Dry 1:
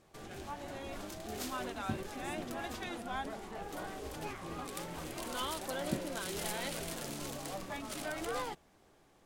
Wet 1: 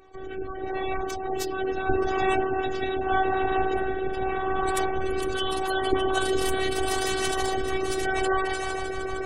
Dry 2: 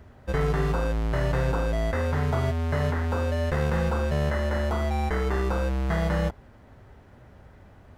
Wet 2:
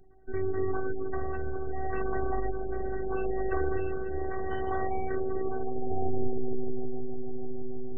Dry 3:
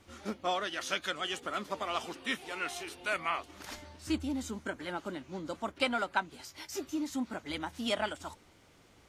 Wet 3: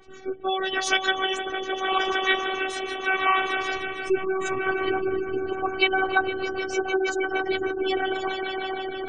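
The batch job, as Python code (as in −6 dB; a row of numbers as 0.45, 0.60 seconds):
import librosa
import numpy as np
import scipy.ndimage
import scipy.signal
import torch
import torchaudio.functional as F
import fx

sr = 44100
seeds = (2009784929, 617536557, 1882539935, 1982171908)

y = fx.echo_swell(x, sr, ms=153, loudest=5, wet_db=-10.5)
y = fx.spec_gate(y, sr, threshold_db=-20, keep='strong')
y = fx.rotary(y, sr, hz=0.8)
y = fx.robotise(y, sr, hz=381.0)
y = y * 10.0 ** (-26 / 20.0) / np.sqrt(np.mean(np.square(y)))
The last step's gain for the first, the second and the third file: +17.5, 0.0, +13.5 decibels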